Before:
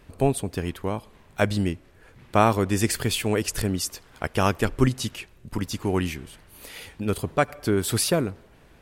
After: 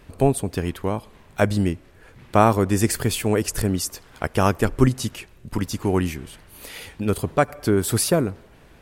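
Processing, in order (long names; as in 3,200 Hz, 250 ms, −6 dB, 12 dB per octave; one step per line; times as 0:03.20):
dynamic equaliser 3,200 Hz, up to −6 dB, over −40 dBFS, Q 0.84
level +3.5 dB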